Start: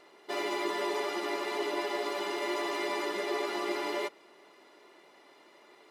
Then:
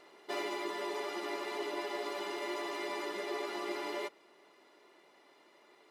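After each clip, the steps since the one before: vocal rider 0.5 s; gain -5 dB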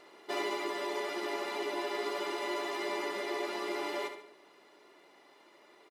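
feedback echo 71 ms, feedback 37%, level -9 dB; on a send at -15 dB: reverb RT60 0.45 s, pre-delay 0.118 s; on the sum: gain +2 dB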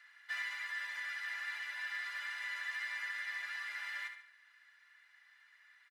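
ladder high-pass 1600 Hz, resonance 80%; gain +4 dB

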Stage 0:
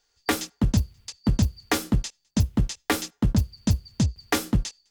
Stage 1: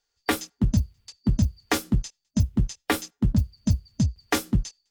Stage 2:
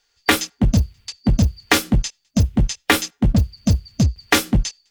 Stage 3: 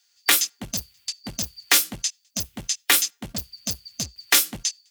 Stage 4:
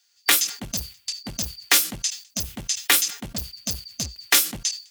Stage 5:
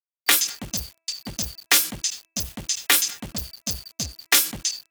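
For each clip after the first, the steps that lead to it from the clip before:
spectral noise reduction 8 dB
bell 2500 Hz +6.5 dB 1.9 oct; in parallel at -5 dB: wavefolder -22 dBFS; on the sum: gain +5 dB
tilt +4.5 dB/oct; gain -8 dB
sustainer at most 150 dB/s
sample gate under -39.5 dBFS; de-hum 328 Hz, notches 8

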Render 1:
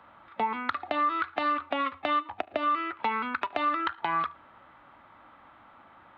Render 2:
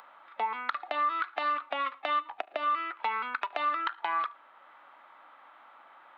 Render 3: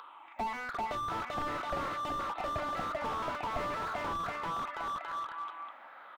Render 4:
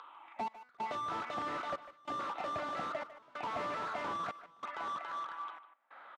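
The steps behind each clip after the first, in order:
HPF 570 Hz 12 dB/oct; upward compressor, threshold -48 dBFS; gain -1.5 dB
moving spectral ripple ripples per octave 0.64, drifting -0.96 Hz, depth 13 dB; bouncing-ball echo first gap 0.39 s, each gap 0.85×, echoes 5; slew limiter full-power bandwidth 22 Hz
step gate "xxx..xxx" 94 bpm -24 dB; BPF 150–7900 Hz; speakerphone echo 0.15 s, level -13 dB; gain -2.5 dB

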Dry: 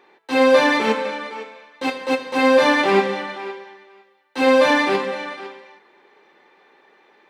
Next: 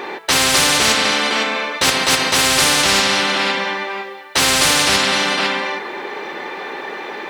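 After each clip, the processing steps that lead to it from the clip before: spectral compressor 10:1; gain +1 dB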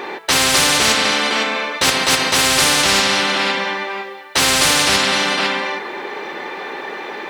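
nothing audible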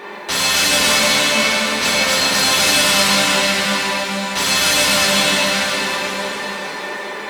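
G.711 law mismatch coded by mu; resonator 200 Hz, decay 0.16 s, harmonics odd, mix 80%; plate-style reverb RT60 4.7 s, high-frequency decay 1×, DRR -6.5 dB; gain +3 dB

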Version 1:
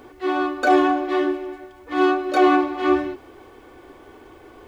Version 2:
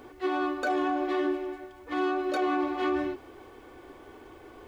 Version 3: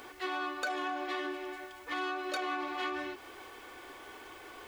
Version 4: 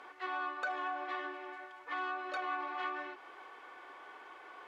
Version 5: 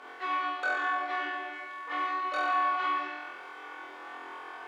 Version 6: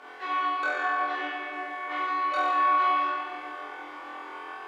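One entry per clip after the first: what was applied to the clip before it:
limiter -16.5 dBFS, peak gain reduction 11 dB; gain -3.5 dB
tilt shelf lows -9 dB, about 720 Hz; compressor 2:1, threshold -38 dBFS, peak gain reduction 8.5 dB
band-pass 1100 Hz, Q 0.94
flutter echo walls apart 4 m, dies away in 1.1 s; gain +2.5 dB
shoebox room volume 210 m³, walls hard, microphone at 0.43 m; Opus 48 kbps 48000 Hz

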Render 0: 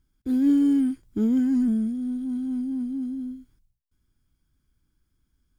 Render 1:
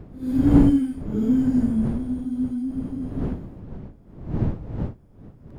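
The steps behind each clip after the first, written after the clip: phase scrambler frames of 0.2 s; wind noise 190 Hz -28 dBFS; pre-echo 85 ms -13 dB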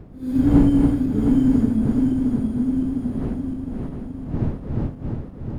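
regenerating reverse delay 0.354 s, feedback 70%, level -4 dB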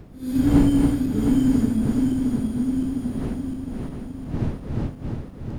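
high shelf 2200 Hz +12 dB; gain -2 dB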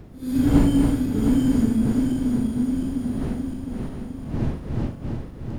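flutter echo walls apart 6.9 m, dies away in 0.3 s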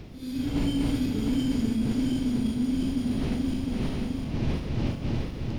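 reverse; compressor 5:1, threshold -28 dBFS, peak gain reduction 16 dB; reverse; band shelf 3600 Hz +9.5 dB; AGC gain up to 4 dB

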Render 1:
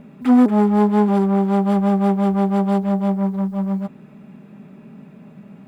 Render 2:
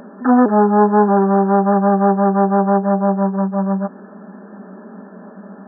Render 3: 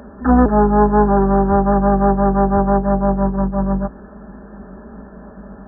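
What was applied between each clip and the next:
FFT band-pass 180–1800 Hz; bell 230 Hz -9.5 dB 1.2 oct; in parallel at +1.5 dB: compressor, threshold -31 dBFS, peak gain reduction 14 dB; on the sum: gain +6.5 dB
octaver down 2 oct, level -3 dB; gain -1 dB

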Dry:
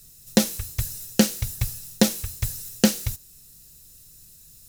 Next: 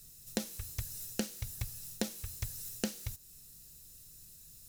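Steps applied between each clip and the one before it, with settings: compressor 3:1, threshold -31 dBFS, peak gain reduction 14.5 dB; gain -5 dB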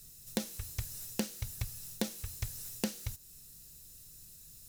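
self-modulated delay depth 0.12 ms; gain +1.5 dB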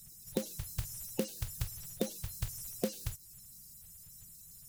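bin magnitudes rounded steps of 30 dB; gain +1 dB

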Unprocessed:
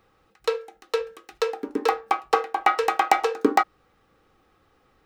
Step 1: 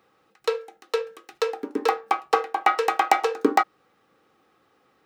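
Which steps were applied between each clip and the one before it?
HPF 170 Hz 12 dB/oct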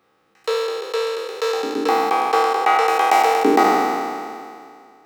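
spectral trails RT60 2.21 s; gain -1.5 dB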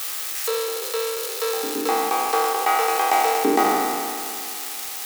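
switching spikes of -14 dBFS; gain -4 dB

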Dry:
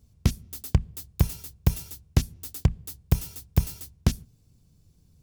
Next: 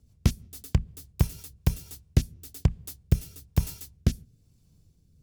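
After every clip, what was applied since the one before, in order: rotary speaker horn 6.3 Hz, later 1.1 Hz, at 1.16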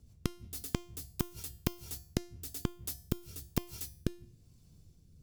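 flipped gate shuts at -15 dBFS, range -39 dB; resonator 350 Hz, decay 0.48 s, harmonics all, mix 70%; gain +11 dB

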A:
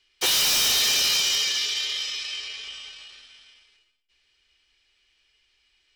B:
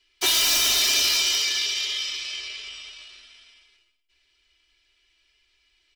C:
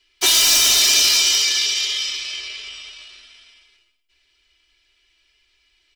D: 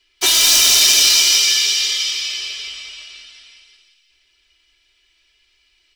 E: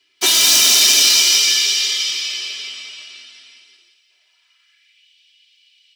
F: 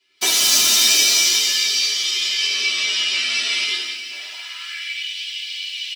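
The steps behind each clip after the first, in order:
comb 3 ms, depth 90%; gain -2 dB
dynamic EQ 7300 Hz, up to +5 dB, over -34 dBFS, Q 0.83; gain +3.5 dB
thin delay 0.172 s, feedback 55%, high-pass 2300 Hz, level -4 dB; gain +1 dB
high-pass sweep 170 Hz -> 3000 Hz, 3.49–5.09
recorder AGC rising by 29 dB/s; on a send at -3 dB: reverb RT60 0.85 s, pre-delay 5 ms; on the sum: endless flanger 10.6 ms +1.3 Hz; gain -1.5 dB

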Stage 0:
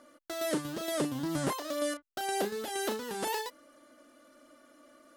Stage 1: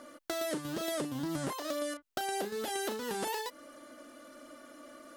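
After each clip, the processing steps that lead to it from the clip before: compressor, threshold -40 dBFS, peak gain reduction 13.5 dB; gain +7 dB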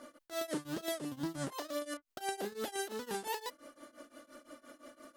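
tremolo triangle 5.8 Hz, depth 95%; gain +1 dB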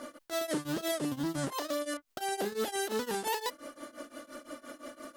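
limiter -31.5 dBFS, peak gain reduction 9 dB; gain +8.5 dB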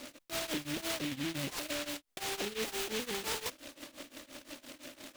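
noise-modulated delay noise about 2600 Hz, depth 0.26 ms; gain -3.5 dB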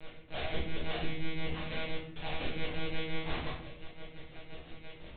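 flange 1.3 Hz, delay 1.7 ms, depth 5.2 ms, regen +73%; monotone LPC vocoder at 8 kHz 160 Hz; reverb RT60 0.75 s, pre-delay 7 ms, DRR -6 dB; gain -1.5 dB

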